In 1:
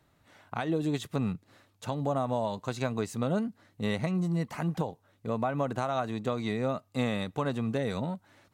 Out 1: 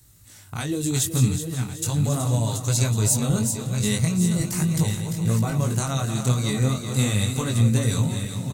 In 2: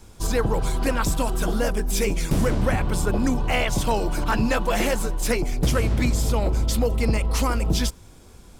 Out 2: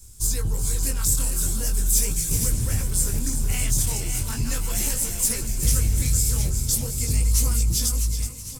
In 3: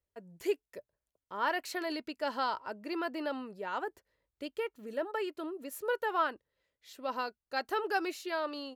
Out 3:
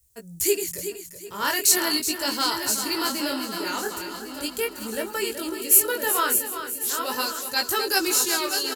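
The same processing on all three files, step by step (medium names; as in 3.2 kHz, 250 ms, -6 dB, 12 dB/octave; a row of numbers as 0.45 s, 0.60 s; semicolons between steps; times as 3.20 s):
backward echo that repeats 550 ms, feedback 47%, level -7 dB; FFT filter 120 Hz 0 dB, 190 Hz -10 dB, 420 Hz -14 dB, 660 Hz -20 dB, 3.3 kHz -7 dB, 7.8 kHz +11 dB; chorus 0.39 Hz, delay 17.5 ms, depth 6.4 ms; on a send: feedback delay 374 ms, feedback 36%, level -10 dB; on the sum: normalise loudness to -23 LUFS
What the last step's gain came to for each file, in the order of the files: +18.0 dB, +3.0 dB, +23.5 dB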